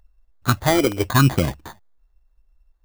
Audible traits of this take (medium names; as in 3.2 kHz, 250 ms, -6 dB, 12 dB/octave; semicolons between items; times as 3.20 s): phasing stages 4, 0.87 Hz, lowest notch 160–1100 Hz; aliases and images of a low sample rate 2.7 kHz, jitter 0%